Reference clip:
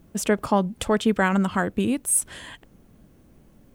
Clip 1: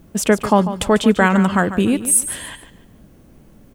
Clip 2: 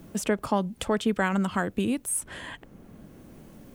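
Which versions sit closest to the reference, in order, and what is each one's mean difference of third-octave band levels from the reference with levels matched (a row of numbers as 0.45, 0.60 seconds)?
1, 2; 2.5, 4.0 decibels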